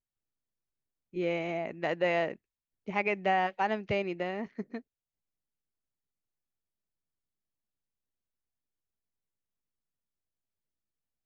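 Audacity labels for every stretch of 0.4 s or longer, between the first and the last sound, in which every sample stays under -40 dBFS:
2.340000	2.880000	silence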